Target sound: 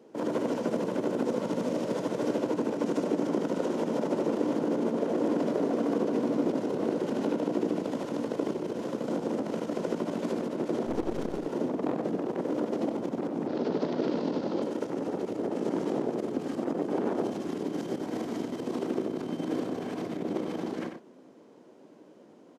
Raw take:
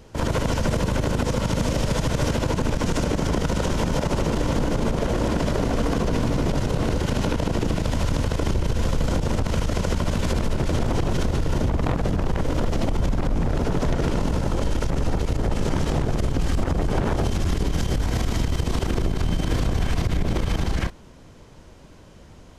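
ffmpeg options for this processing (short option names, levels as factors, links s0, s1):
-filter_complex "[0:a]highpass=f=270:w=0.5412,highpass=f=270:w=1.3066,asettb=1/sr,asplit=3[s0][s1][s2];[s0]atrim=end=10.864[s3];[s1]atrim=start=10.86:end=11.38,asetpts=PTS-STARTPTS,afade=t=in:d=0.004:c=qsin,afade=t=out:st=0.516:d=0.004:c=qsin,aeval=exprs='0.178*(cos(1*acos(clip(val(0)/0.178,-1,1)))-cos(1*PI/2))+0.0158*(cos(7*acos(clip(val(0)/0.178,-1,1)))-cos(7*PI/2))+0.00794*(cos(8*acos(clip(val(0)/0.178,-1,1)))-cos(8*PI/2))':c=same[s4];[s2]atrim=start=11.376[s5];[s3][s4]acrossfade=d=0.004:c1=hsin:c2=qsin[s6];[s6][s5]acrossfade=d=0.004:c1=qsin:c2=hsin,asettb=1/sr,asplit=3[s7][s8][s9];[s7]atrim=end=13.474[s10];[s8]atrim=start=13.47:end=14.62,asetpts=PTS-STARTPTS,afade=t=in:d=0.004:c=qsin,afade=t=out:st=1.146:d=0.004:c=qsin,lowpass=f=4500:t=q:w=2.8[s11];[s9]atrim=start=14.616[s12];[s10][s11]acrossfade=d=0.004:c1=hsin:c2=qsin[s13];[s13][s12]acrossfade=d=0.004:c1=qsin:c2=hsin,tiltshelf=f=720:g=10,asplit=2[s14][s15];[s15]adelay=93.29,volume=0.447,highshelf=f=4000:g=-2.1[s16];[s14][s16]amix=inputs=2:normalize=0,volume=0.501"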